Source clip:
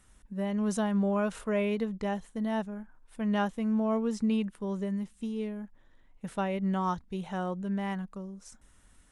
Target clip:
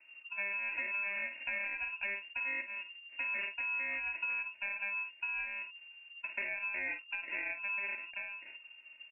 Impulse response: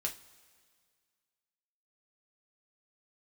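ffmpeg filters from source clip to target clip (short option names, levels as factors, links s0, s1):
-af "aresample=16000,acrusher=samples=10:mix=1:aa=0.000001,aresample=44100,aecho=1:1:3.2:0.7,aecho=1:1:30|50:0.188|0.299,aeval=exprs='0.0891*(abs(mod(val(0)/0.0891+3,4)-2)-1)':c=same,lowpass=f=2400:t=q:w=0.5098,lowpass=f=2400:t=q:w=0.6013,lowpass=f=2400:t=q:w=0.9,lowpass=f=2400:t=q:w=2.563,afreqshift=-2800,acompressor=threshold=0.0178:ratio=6"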